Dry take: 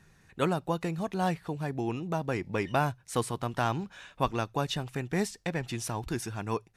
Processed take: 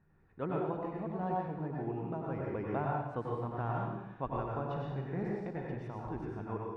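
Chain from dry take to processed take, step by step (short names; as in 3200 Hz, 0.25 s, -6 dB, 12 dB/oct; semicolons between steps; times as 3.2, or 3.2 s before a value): LPF 1200 Hz 12 dB/oct; 4.49–5.44 flutter echo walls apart 8.8 m, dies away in 0.36 s; plate-style reverb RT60 0.94 s, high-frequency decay 1×, pre-delay 80 ms, DRR -3 dB; gain -9 dB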